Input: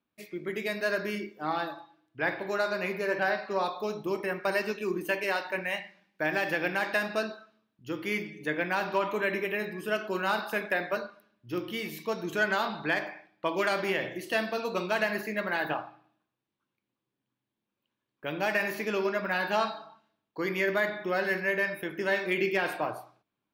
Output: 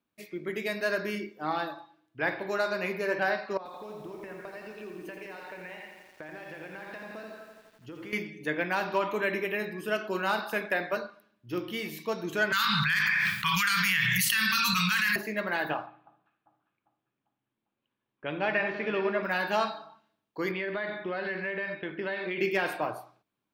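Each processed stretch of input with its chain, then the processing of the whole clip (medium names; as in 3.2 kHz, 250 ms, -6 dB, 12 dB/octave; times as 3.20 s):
3.57–8.13 s: peaking EQ 13 kHz -12.5 dB 2 oct + compression 12:1, threshold -39 dBFS + bit-crushed delay 85 ms, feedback 80%, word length 10-bit, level -7 dB
12.52–15.16 s: inverse Chebyshev band-stop 300–700 Hz, stop band 50 dB + treble shelf 6.6 kHz +10.5 dB + level flattener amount 100%
15.86–19.23 s: low-pass 3.6 kHz 24 dB/octave + echo whose repeats swap between lows and highs 199 ms, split 1.4 kHz, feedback 65%, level -9 dB
20.51–22.41 s: steep low-pass 4.6 kHz 72 dB/octave + compression 4:1, threshold -29 dBFS
whole clip: none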